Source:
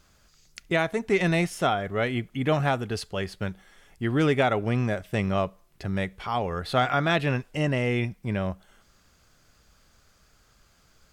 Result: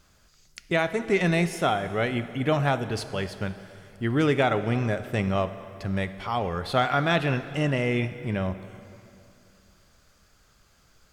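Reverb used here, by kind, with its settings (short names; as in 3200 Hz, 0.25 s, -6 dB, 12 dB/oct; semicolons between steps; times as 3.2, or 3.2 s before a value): plate-style reverb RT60 2.8 s, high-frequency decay 0.85×, DRR 11 dB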